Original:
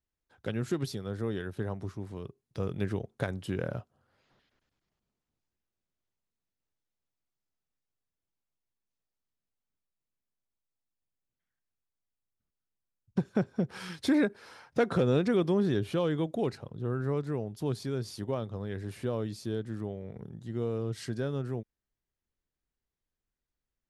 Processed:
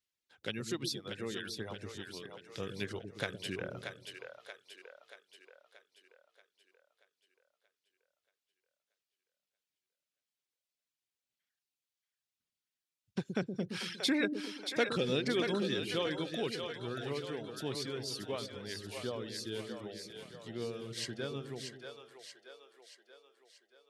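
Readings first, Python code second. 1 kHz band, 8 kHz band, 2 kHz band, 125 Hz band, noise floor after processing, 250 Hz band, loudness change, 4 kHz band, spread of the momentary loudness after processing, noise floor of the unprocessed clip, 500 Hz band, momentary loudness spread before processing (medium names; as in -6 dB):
-4.0 dB, +4.5 dB, +2.0 dB, -11.0 dB, under -85 dBFS, -7.0 dB, -5.0 dB, +7.5 dB, 19 LU, under -85 dBFS, -5.5 dB, 12 LU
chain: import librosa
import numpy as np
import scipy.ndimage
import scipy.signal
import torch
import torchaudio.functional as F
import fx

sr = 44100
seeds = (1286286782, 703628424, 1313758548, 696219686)

y = fx.weighting(x, sr, curve='D')
y = fx.dereverb_blind(y, sr, rt60_s=1.1)
y = fx.high_shelf(y, sr, hz=7400.0, db=5.0)
y = fx.echo_split(y, sr, split_hz=450.0, low_ms=119, high_ms=631, feedback_pct=52, wet_db=-6)
y = y * 10.0 ** (-5.0 / 20.0)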